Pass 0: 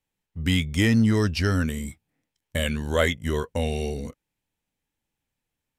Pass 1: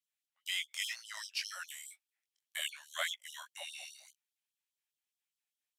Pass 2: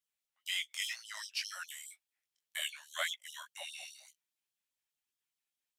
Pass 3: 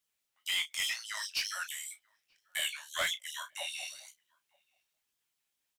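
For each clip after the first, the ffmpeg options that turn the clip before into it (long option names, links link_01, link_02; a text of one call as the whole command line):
ffmpeg -i in.wav -af "equalizer=frequency=660:width_type=o:width=2.3:gain=-12,flanger=delay=16.5:depth=7.4:speed=1.9,afftfilt=real='re*gte(b*sr/1024,540*pow(3100/540,0.5+0.5*sin(2*PI*4.9*pts/sr)))':imag='im*gte(b*sr/1024,540*pow(3100/540,0.5+0.5*sin(2*PI*4.9*pts/sr)))':win_size=1024:overlap=0.75,volume=-1.5dB" out.wav
ffmpeg -i in.wav -af "flanger=delay=0.6:depth=5.8:regen=-65:speed=0.58:shape=sinusoidal,volume=4.5dB" out.wav
ffmpeg -i in.wav -filter_complex "[0:a]asoftclip=type=tanh:threshold=-32dB,asplit=2[link_01][link_02];[link_02]adelay=33,volume=-11.5dB[link_03];[link_01][link_03]amix=inputs=2:normalize=0,asplit=2[link_04][link_05];[link_05]adelay=932.9,volume=-29dB,highshelf=frequency=4000:gain=-21[link_06];[link_04][link_06]amix=inputs=2:normalize=0,volume=6.5dB" out.wav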